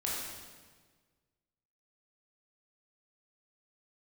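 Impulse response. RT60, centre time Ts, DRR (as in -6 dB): 1.5 s, 94 ms, -5.5 dB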